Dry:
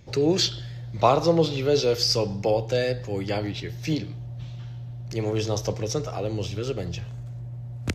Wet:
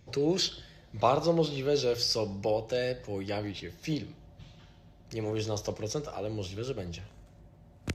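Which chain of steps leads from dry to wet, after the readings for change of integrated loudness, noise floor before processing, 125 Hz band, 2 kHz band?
−6.0 dB, −37 dBFS, −9.0 dB, −6.0 dB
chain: mains-hum notches 60/120 Hz
level −6 dB

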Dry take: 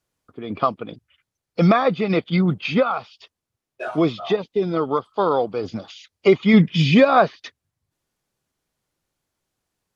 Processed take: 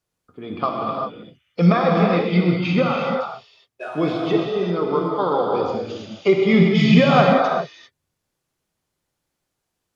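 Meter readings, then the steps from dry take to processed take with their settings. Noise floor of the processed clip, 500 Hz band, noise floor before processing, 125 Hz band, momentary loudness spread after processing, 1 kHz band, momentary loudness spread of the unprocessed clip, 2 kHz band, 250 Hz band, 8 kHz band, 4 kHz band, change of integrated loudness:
−79 dBFS, +1.0 dB, −85 dBFS, +2.5 dB, 16 LU, +1.0 dB, 17 LU, +1.0 dB, +1.0 dB, can't be measured, +1.0 dB, +0.5 dB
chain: reverb whose tail is shaped and stops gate 420 ms flat, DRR −1.5 dB
level −3 dB

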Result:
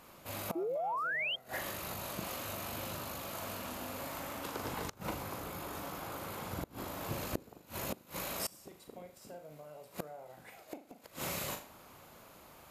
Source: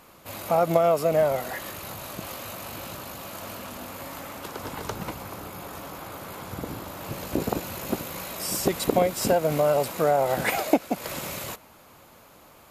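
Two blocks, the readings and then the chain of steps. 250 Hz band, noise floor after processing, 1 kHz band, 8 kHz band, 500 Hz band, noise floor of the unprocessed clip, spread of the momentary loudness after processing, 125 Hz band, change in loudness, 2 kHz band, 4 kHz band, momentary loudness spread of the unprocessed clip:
−14.0 dB, −60 dBFS, −12.0 dB, −9.5 dB, −17.5 dB, −53 dBFS, 16 LU, −11.5 dB, −12.5 dB, −6.0 dB, −6.5 dB, 16 LU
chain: flutter between parallel walls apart 6.8 metres, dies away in 0.35 s
gate with flip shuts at −19 dBFS, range −24 dB
sound drawn into the spectrogram rise, 0:00.55–0:01.36, 320–3,300 Hz −30 dBFS
level −5 dB

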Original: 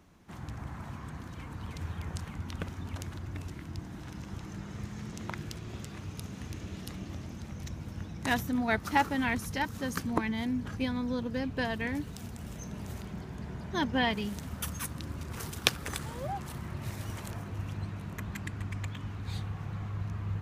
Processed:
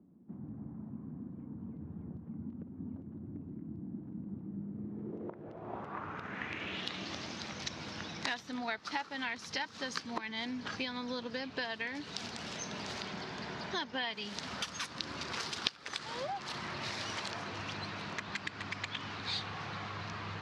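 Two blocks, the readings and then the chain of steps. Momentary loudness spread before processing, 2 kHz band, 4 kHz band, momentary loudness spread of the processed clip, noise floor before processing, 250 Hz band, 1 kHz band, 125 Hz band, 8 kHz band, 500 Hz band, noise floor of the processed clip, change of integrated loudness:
12 LU, −2.5 dB, +1.5 dB, 9 LU, −44 dBFS, −7.0 dB, −4.5 dB, −10.5 dB, −3.5 dB, −4.5 dB, −50 dBFS, −4.0 dB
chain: meter weighting curve A
downward compressor 6 to 1, threshold −44 dBFS, peak gain reduction 24 dB
low-pass filter sweep 230 Hz → 4,700 Hz, 0:04.72–0:07.09
level +7.5 dB

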